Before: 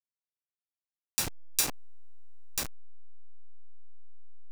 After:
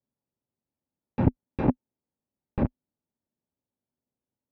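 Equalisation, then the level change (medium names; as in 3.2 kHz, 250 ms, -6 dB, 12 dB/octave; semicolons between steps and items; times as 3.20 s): cabinet simulation 130–2400 Hz, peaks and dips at 250 Hz +9 dB, 390 Hz +4 dB, 570 Hz +8 dB, 870 Hz +8 dB; tilt EQ -4.5 dB/octave; bass shelf 310 Hz +12 dB; 0.0 dB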